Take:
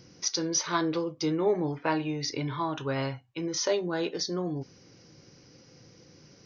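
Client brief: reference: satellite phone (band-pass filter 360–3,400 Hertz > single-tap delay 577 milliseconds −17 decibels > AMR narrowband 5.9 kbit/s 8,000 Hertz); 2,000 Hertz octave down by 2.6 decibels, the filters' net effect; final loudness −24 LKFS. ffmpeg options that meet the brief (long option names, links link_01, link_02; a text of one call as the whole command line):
ffmpeg -i in.wav -af "highpass=360,lowpass=3400,equalizer=frequency=2000:width_type=o:gain=-3,aecho=1:1:577:0.141,volume=11dB" -ar 8000 -c:a libopencore_amrnb -b:a 5900 out.amr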